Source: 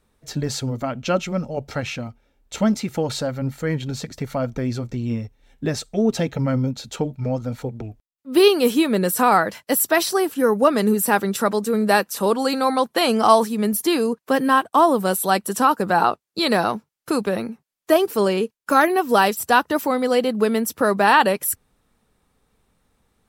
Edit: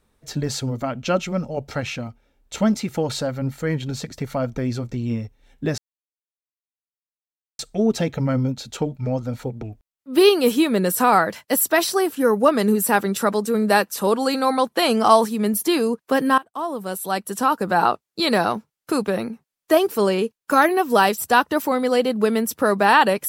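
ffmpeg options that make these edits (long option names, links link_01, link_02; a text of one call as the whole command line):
ffmpeg -i in.wav -filter_complex "[0:a]asplit=3[link_01][link_02][link_03];[link_01]atrim=end=5.78,asetpts=PTS-STARTPTS,afade=type=out:start_time=5.776:duration=0.004:curve=hsin,apad=pad_dur=1.81[link_04];[link_02]atrim=start=5.78:end=14.57,asetpts=PTS-STARTPTS,afade=type=in:duration=0.004:curve=hsin,afade=type=out:start_time=8.786:duration=0.004:curve=hsin:silence=0.1[link_05];[link_03]atrim=start=14.57,asetpts=PTS-STARTPTS,afade=type=in:duration=1.49:silence=0.1[link_06];[link_04][link_05][link_06]concat=n=3:v=0:a=1" out.wav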